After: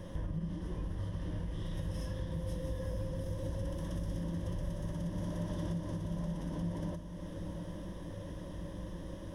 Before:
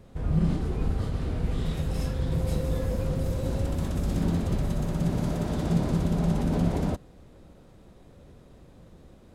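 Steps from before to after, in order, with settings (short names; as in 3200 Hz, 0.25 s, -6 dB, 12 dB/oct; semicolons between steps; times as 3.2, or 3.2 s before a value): ripple EQ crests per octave 1.2, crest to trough 12 dB; compressor 10:1, threshold -40 dBFS, peak gain reduction 24.5 dB; diffused feedback echo 0.929 s, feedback 57%, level -9 dB; gain +5 dB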